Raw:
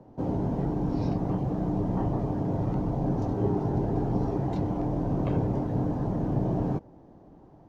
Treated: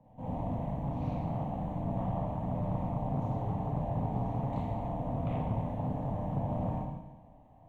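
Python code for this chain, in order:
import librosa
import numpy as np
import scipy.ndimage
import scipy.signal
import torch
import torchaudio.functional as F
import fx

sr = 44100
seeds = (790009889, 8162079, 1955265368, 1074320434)

y = fx.fixed_phaser(x, sr, hz=1400.0, stages=6)
y = fx.rev_schroeder(y, sr, rt60_s=1.1, comb_ms=25, drr_db=-6.0)
y = fx.doppler_dist(y, sr, depth_ms=0.32)
y = y * librosa.db_to_amplitude(-8.0)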